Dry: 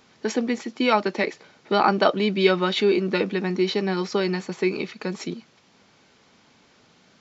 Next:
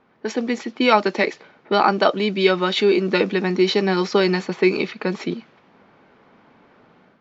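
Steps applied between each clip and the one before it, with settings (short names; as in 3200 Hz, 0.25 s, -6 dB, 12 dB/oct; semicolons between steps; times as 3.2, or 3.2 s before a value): low-pass opened by the level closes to 1500 Hz, open at -18 dBFS; bell 80 Hz -6 dB 2.1 oct; AGC gain up to 7.5 dB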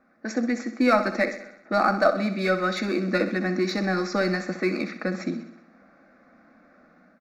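in parallel at -9 dB: hard clip -16 dBFS, distortion -9 dB; on the sum: fixed phaser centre 620 Hz, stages 8; feedback echo 64 ms, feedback 57%, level -11.5 dB; gain -3 dB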